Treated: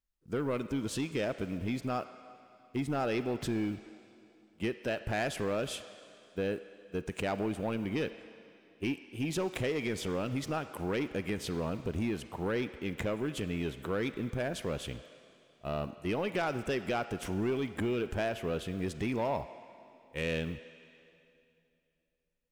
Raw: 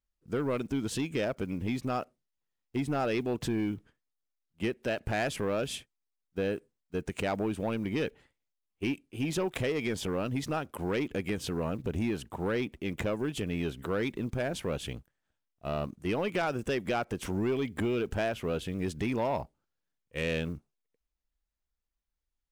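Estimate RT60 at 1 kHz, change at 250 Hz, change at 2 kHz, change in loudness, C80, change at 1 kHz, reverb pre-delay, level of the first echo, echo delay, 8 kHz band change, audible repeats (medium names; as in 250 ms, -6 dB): 2.6 s, -2.0 dB, -1.5 dB, -2.0 dB, 12.5 dB, -1.5 dB, 31 ms, no echo, no echo, -2.0 dB, no echo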